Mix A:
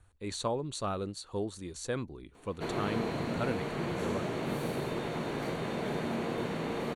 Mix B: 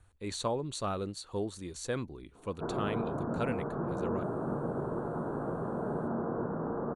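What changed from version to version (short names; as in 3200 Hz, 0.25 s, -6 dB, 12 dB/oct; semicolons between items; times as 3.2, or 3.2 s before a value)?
background: add steep low-pass 1500 Hz 72 dB/oct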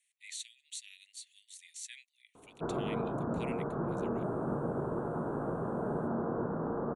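speech: add steep high-pass 1900 Hz 96 dB/oct; master: add bell 4500 Hz -7.5 dB 0.38 oct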